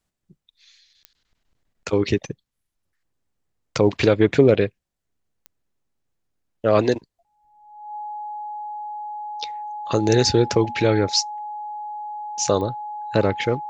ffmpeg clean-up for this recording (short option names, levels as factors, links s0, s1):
-af "adeclick=t=4,bandreject=f=840:w=30"